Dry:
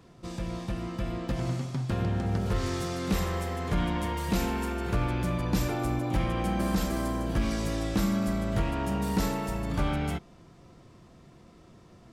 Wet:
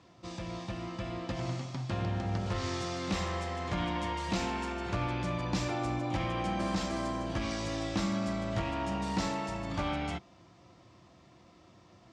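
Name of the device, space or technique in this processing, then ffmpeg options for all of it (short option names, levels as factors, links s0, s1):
car door speaker: -af "highpass=100,equalizer=f=150:t=q:w=4:g=-9,equalizer=f=230:t=q:w=4:g=-8,equalizer=f=430:t=q:w=4:g=-10,equalizer=f=1500:t=q:w=4:g=-4,lowpass=f=6900:w=0.5412,lowpass=f=6900:w=1.3066"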